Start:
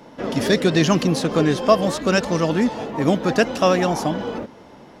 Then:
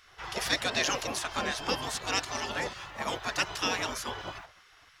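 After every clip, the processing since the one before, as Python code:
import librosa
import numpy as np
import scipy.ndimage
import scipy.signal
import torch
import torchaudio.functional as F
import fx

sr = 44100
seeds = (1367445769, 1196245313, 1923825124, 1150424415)

y = fx.spec_gate(x, sr, threshold_db=-15, keep='weak')
y = y * 10.0 ** (-2.5 / 20.0)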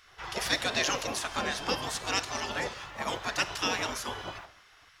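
y = fx.rev_schroeder(x, sr, rt60_s=0.83, comb_ms=32, drr_db=14.5)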